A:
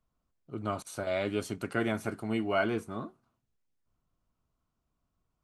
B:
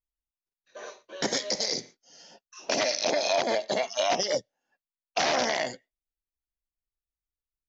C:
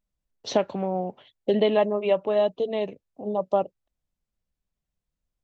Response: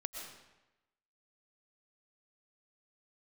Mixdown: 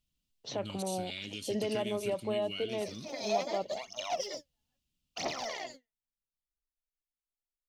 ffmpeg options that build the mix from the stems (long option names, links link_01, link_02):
-filter_complex "[0:a]firequalizer=gain_entry='entry(240,0);entry(740,-25);entry(2800,14);entry(6900,9)':delay=0.05:min_phase=1,acompressor=threshold=-32dB:ratio=6,volume=-5dB,asplit=3[link_01][link_02][link_03];[link_02]volume=-22dB[link_04];[1:a]equalizer=frequency=1600:width_type=o:width=0.21:gain=-13,aphaser=in_gain=1:out_gain=1:delay=4.8:decay=0.76:speed=0.76:type=triangular,volume=-13.5dB[link_05];[2:a]alimiter=limit=-16.5dB:level=0:latency=1,volume=-8.5dB[link_06];[link_03]apad=whole_len=338695[link_07];[link_05][link_07]sidechaincompress=threshold=-57dB:ratio=8:attack=35:release=125[link_08];[link_04]aecho=0:1:998:1[link_09];[link_01][link_08][link_06][link_09]amix=inputs=4:normalize=0"